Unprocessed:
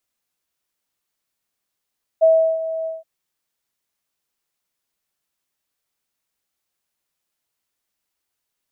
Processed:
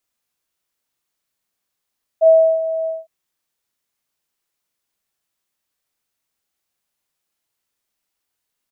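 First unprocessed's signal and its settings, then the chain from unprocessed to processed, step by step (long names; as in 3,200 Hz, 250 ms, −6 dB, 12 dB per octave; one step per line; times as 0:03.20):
note with an ADSR envelope sine 647 Hz, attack 23 ms, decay 351 ms, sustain −13.5 dB, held 0.65 s, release 174 ms −8.5 dBFS
double-tracking delay 37 ms −5.5 dB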